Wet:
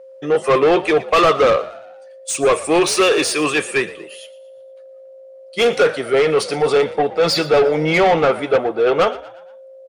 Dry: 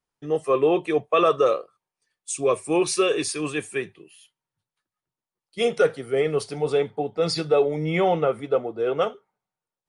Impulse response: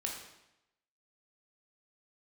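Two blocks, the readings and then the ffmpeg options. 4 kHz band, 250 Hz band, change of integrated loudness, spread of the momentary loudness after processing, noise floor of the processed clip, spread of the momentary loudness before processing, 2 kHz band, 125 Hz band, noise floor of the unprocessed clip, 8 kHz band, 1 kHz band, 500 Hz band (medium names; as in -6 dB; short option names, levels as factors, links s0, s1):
+10.0 dB, +6.0 dB, +7.0 dB, 8 LU, -41 dBFS, 8 LU, +11.5 dB, +3.5 dB, under -85 dBFS, +7.5 dB, +8.5 dB, +6.5 dB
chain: -filter_complex "[0:a]aeval=exprs='val(0)+0.00282*sin(2*PI*530*n/s)':c=same,asplit=2[s0][s1];[s1]highpass=f=720:p=1,volume=11.2,asoftclip=type=tanh:threshold=0.398[s2];[s0][s2]amix=inputs=2:normalize=0,lowpass=f=3800:p=1,volume=0.501,asplit=5[s3][s4][s5][s6][s7];[s4]adelay=117,afreqshift=56,volume=0.126[s8];[s5]adelay=234,afreqshift=112,volume=0.0569[s9];[s6]adelay=351,afreqshift=168,volume=0.0254[s10];[s7]adelay=468,afreqshift=224,volume=0.0115[s11];[s3][s8][s9][s10][s11]amix=inputs=5:normalize=0,volume=1.26"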